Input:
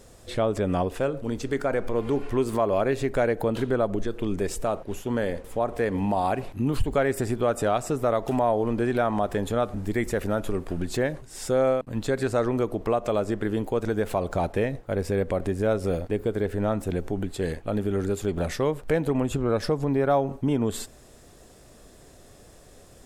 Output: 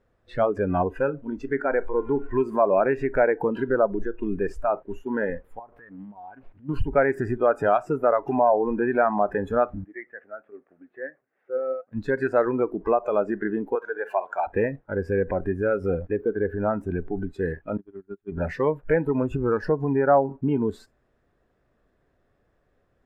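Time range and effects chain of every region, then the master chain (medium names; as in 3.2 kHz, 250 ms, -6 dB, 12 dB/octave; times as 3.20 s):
5.59–6.69 s: compression 16:1, threshold -33 dBFS + loudspeaker Doppler distortion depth 0.42 ms
9.84–11.92 s: cabinet simulation 360–2200 Hz, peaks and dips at 370 Hz -4 dB, 970 Hz -10 dB, 1.5 kHz -4 dB + flange 1.4 Hz, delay 3.4 ms, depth 5.5 ms, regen +78%
13.75–14.47 s: high-pass 510 Hz + flutter echo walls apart 11.3 m, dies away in 0.32 s
17.77–18.32 s: gate -24 dBFS, range -29 dB + peaking EQ 480 Hz -14 dB 0.27 oct
whole clip: dynamic bell 650 Hz, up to +5 dB, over -36 dBFS, Q 1.2; spectral noise reduction 17 dB; FFT filter 800 Hz 0 dB, 1.6 kHz +5 dB, 7.9 kHz -23 dB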